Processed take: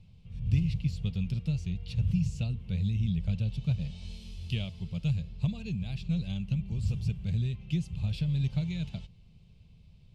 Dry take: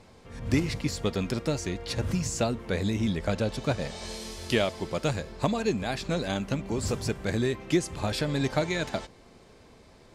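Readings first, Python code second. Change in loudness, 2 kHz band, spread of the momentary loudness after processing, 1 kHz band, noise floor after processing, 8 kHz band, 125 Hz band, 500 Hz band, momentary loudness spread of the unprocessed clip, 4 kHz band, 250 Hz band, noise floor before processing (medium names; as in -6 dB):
-2.5 dB, -14.5 dB, 7 LU, under -20 dB, -56 dBFS, under -15 dB, +3.0 dB, -22.0 dB, 5 LU, -10.0 dB, -4.5 dB, -54 dBFS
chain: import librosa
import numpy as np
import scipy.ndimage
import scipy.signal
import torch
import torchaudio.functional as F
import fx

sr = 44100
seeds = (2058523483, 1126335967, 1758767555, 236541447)

y = fx.curve_eq(x, sr, hz=(170.0, 290.0, 460.0, 1800.0, 2700.0, 6700.0), db=(0, -26, -25, -30, -9, -23))
y = F.gain(torch.from_numpy(y), 3.5).numpy()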